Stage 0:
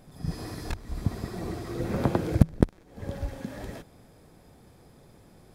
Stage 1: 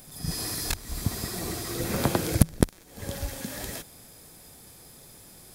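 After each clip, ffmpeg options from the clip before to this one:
ffmpeg -i in.wav -af "crystalizer=i=7:c=0,volume=-1dB" out.wav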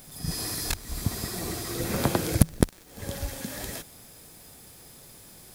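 ffmpeg -i in.wav -af "acrusher=bits=8:mix=0:aa=0.000001" out.wav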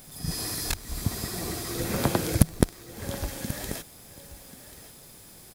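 ffmpeg -i in.wav -af "aecho=1:1:1087:0.178" out.wav

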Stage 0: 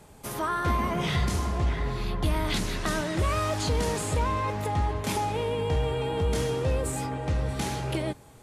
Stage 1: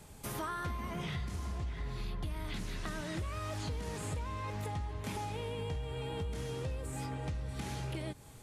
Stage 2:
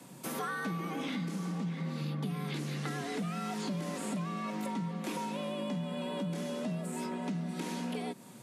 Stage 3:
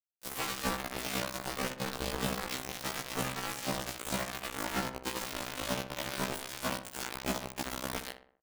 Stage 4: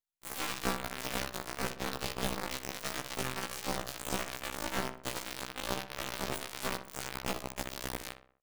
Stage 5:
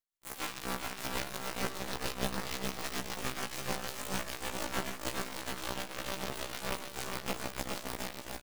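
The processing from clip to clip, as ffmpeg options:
ffmpeg -i in.wav -filter_complex "[0:a]acrossover=split=2800[link_01][link_02];[link_02]acompressor=threshold=-41dB:ratio=4:attack=1:release=60[link_03];[link_01][link_03]amix=inputs=2:normalize=0,equalizer=frequency=610:width=0.36:gain=-6.5,acompressor=threshold=-36dB:ratio=10,volume=1dB" out.wav
ffmpeg -i in.wav -af "afreqshift=110,volume=2dB" out.wav
ffmpeg -i in.wav -filter_complex "[0:a]acrusher=bits=4:mix=0:aa=0.000001,asplit=2[link_01][link_02];[link_02]adelay=62,lowpass=frequency=2200:poles=1,volume=-9dB,asplit=2[link_03][link_04];[link_04]adelay=62,lowpass=frequency=2200:poles=1,volume=0.49,asplit=2[link_05][link_06];[link_06]adelay=62,lowpass=frequency=2200:poles=1,volume=0.49,asplit=2[link_07][link_08];[link_08]adelay=62,lowpass=frequency=2200:poles=1,volume=0.49,asplit=2[link_09][link_10];[link_10]adelay=62,lowpass=frequency=2200:poles=1,volume=0.49,asplit=2[link_11][link_12];[link_12]adelay=62,lowpass=frequency=2200:poles=1,volume=0.49[link_13];[link_01][link_03][link_05][link_07][link_09][link_11][link_13]amix=inputs=7:normalize=0,afftfilt=real='re*1.73*eq(mod(b,3),0)':imag='im*1.73*eq(mod(b,3),0)':win_size=2048:overlap=0.75,volume=4.5dB" out.wav
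ffmpeg -i in.wav -af "aeval=exprs='max(val(0),0)':channel_layout=same,volume=2dB" out.wav
ffmpeg -i in.wav -filter_complex "[0:a]tremolo=f=6.7:d=0.62,asplit=2[link_01][link_02];[link_02]aecho=0:1:410|738|1000|1210|1378:0.631|0.398|0.251|0.158|0.1[link_03];[link_01][link_03]amix=inputs=2:normalize=0" out.wav

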